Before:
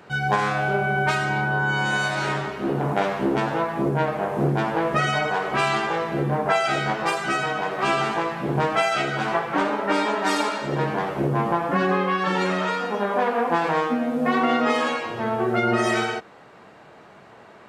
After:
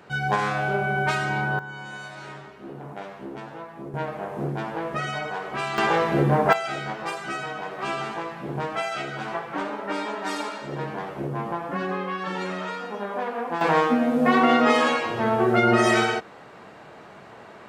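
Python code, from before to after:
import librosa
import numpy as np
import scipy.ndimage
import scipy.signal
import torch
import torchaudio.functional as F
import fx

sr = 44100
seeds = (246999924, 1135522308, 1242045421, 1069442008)

y = fx.gain(x, sr, db=fx.steps((0.0, -2.0), (1.59, -14.5), (3.94, -7.0), (5.78, 3.5), (6.53, -7.0), (13.61, 2.5)))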